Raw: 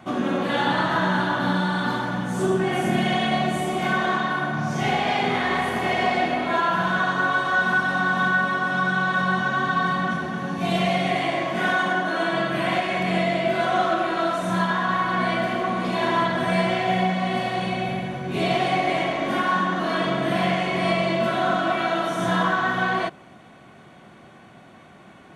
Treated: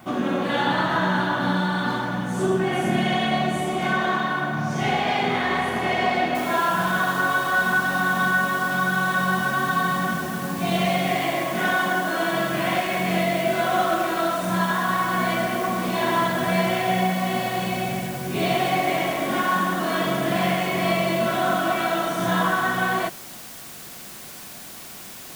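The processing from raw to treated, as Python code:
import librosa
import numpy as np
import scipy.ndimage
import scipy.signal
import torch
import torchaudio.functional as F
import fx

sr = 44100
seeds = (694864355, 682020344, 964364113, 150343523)

y = fx.noise_floor_step(x, sr, seeds[0], at_s=6.35, before_db=-60, after_db=-40, tilt_db=0.0)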